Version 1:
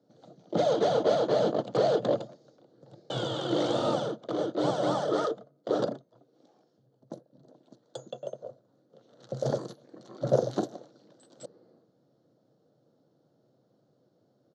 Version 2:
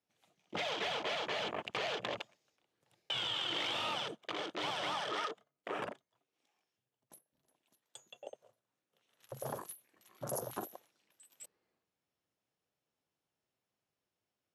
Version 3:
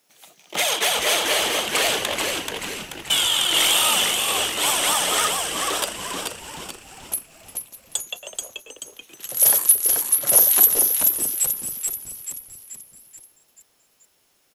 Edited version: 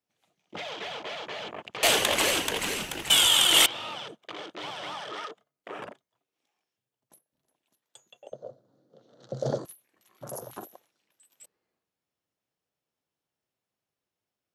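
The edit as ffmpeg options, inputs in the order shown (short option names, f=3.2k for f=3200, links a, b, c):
-filter_complex "[1:a]asplit=3[a][b][c];[a]atrim=end=1.832[d];[2:a]atrim=start=1.828:end=3.662[e];[b]atrim=start=3.658:end=8.322[f];[0:a]atrim=start=8.318:end=9.652[g];[c]atrim=start=9.648[h];[d][e]acrossfade=d=0.004:c1=hsin:c2=hsin[i];[i][f]acrossfade=d=0.004:c1=hsin:c2=hsin[j];[j][g]acrossfade=d=0.004:c1=hsin:c2=hsin[k];[k][h]acrossfade=d=0.004:c1=hsin:c2=hsin"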